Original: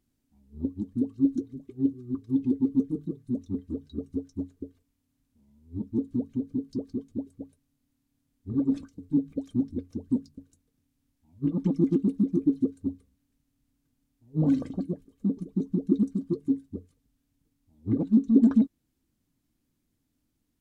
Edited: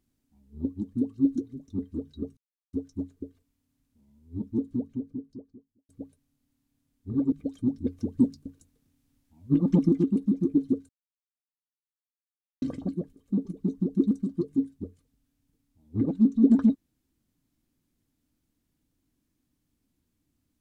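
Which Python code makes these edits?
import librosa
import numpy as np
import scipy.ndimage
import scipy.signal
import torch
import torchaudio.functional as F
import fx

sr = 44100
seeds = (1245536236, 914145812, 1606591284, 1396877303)

y = fx.studio_fade_out(x, sr, start_s=5.86, length_s=1.43)
y = fx.edit(y, sr, fx.cut(start_s=1.68, length_s=1.76),
    fx.insert_silence(at_s=4.13, length_s=0.36),
    fx.cut(start_s=8.72, length_s=0.52),
    fx.clip_gain(start_s=9.77, length_s=2.04, db=4.5),
    fx.silence(start_s=12.81, length_s=1.73), tone=tone)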